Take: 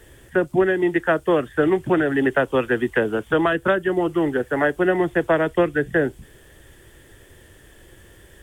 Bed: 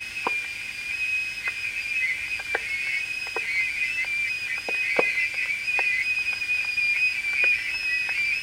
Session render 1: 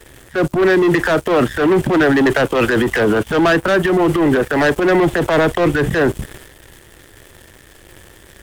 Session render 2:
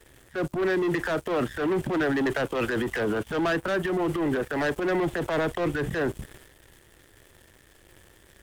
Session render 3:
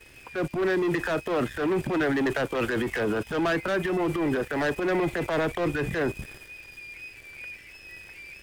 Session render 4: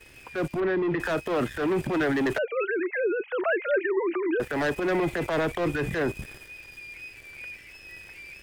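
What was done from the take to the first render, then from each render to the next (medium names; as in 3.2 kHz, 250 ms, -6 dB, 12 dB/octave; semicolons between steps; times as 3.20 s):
waveshaping leveller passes 3; transient shaper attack -7 dB, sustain +8 dB
trim -12 dB
add bed -19.5 dB
0.60–1.00 s: distance through air 310 m; 2.38–4.40 s: formants replaced by sine waves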